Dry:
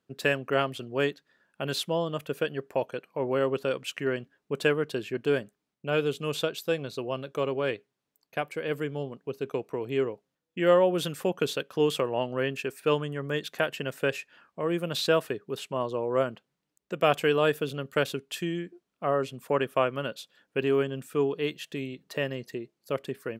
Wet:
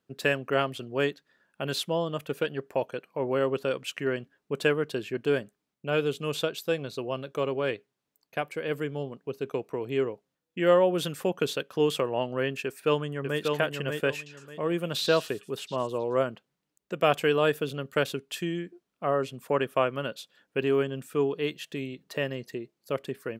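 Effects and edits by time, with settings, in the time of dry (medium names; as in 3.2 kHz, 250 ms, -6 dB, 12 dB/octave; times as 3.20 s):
2.23–2.67 s: loudspeaker Doppler distortion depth 0.1 ms
12.65–13.41 s: echo throw 590 ms, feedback 25%, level -4 dB
14.15–16.23 s: repeats whose band climbs or falls 110 ms, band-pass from 4.3 kHz, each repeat 0.7 oct, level -6 dB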